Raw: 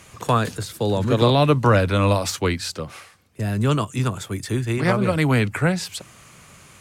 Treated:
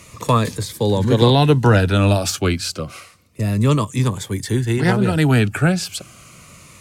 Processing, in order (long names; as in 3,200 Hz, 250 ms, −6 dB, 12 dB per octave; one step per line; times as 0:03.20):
phaser whose notches keep moving one way falling 0.3 Hz
level +4.5 dB